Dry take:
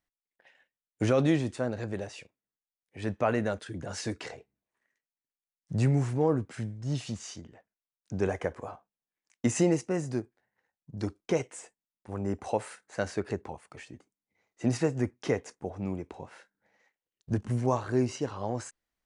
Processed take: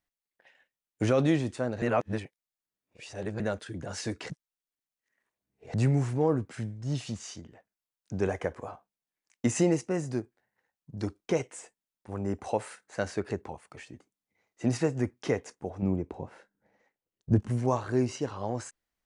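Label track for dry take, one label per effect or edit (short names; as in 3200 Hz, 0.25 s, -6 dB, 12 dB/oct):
1.820000	3.400000	reverse
4.300000	5.740000	reverse
15.820000	17.400000	tilt shelf lows +6.5 dB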